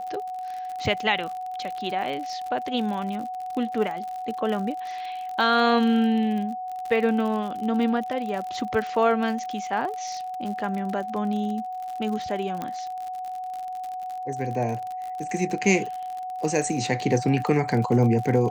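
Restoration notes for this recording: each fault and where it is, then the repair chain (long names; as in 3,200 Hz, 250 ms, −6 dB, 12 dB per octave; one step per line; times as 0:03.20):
surface crackle 54 per second −31 dBFS
whistle 740 Hz −30 dBFS
0:12.62: click −17 dBFS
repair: click removal
notch filter 740 Hz, Q 30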